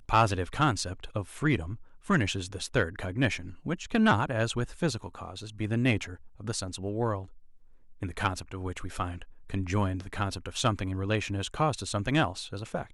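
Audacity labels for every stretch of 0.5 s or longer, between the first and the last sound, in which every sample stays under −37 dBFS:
7.240000	8.020000	silence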